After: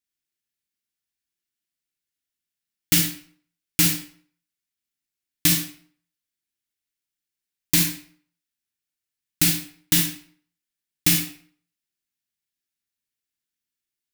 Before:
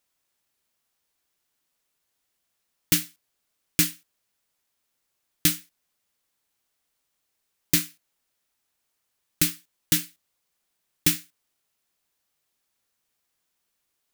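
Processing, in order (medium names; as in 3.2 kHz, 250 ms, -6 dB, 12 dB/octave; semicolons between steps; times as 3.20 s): high-order bell 750 Hz -12 dB; waveshaping leveller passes 3; on a send: reverberation RT60 0.55 s, pre-delay 32 ms, DRR 1.5 dB; on the sum: trim -6 dB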